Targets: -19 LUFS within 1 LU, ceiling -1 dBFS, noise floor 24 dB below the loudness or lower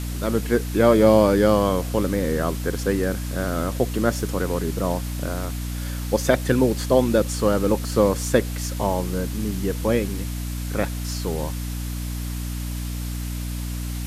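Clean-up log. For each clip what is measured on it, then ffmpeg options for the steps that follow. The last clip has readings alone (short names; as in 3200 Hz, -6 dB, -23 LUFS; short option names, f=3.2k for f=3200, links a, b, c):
hum 60 Hz; harmonics up to 300 Hz; hum level -26 dBFS; noise floor -29 dBFS; noise floor target -47 dBFS; loudness -23.0 LUFS; peak -2.5 dBFS; loudness target -19.0 LUFS
-> -af "bandreject=f=60:t=h:w=4,bandreject=f=120:t=h:w=4,bandreject=f=180:t=h:w=4,bandreject=f=240:t=h:w=4,bandreject=f=300:t=h:w=4"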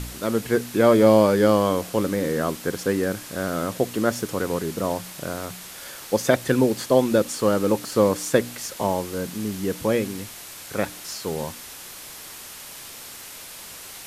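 hum none; noise floor -40 dBFS; noise floor target -47 dBFS
-> -af "afftdn=nr=7:nf=-40"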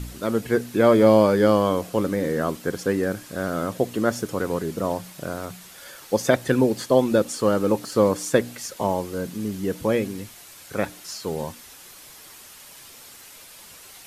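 noise floor -46 dBFS; noise floor target -47 dBFS
-> -af "afftdn=nr=6:nf=-46"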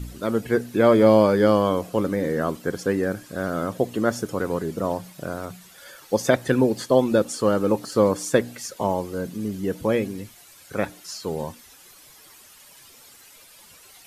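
noise floor -50 dBFS; loudness -23.0 LUFS; peak -3.5 dBFS; loudness target -19.0 LUFS
-> -af "volume=4dB,alimiter=limit=-1dB:level=0:latency=1"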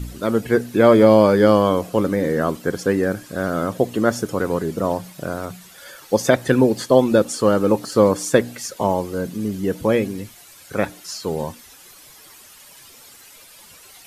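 loudness -19.0 LUFS; peak -1.0 dBFS; noise floor -46 dBFS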